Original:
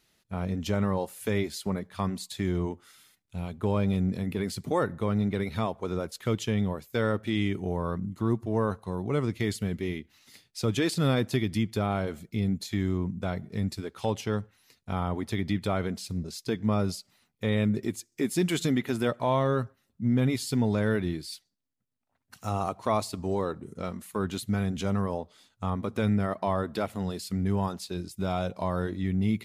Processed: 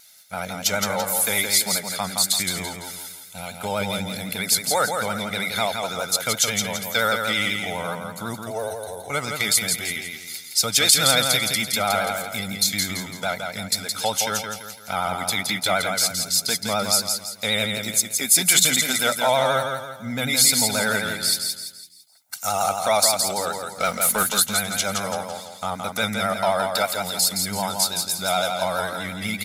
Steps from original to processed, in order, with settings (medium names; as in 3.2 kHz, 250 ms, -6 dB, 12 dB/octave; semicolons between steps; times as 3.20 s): high-pass 130 Hz 6 dB/octave; tilt EQ +4.5 dB/octave; band-stop 2.9 kHz, Q 8.1; comb 1.4 ms, depth 71%; 8.44–9.10 s: static phaser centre 530 Hz, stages 4; 23.80–24.23 s: waveshaping leveller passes 2; vibrato 12 Hz 57 cents; feedback delay 168 ms, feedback 40%, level -5 dB; trim +6.5 dB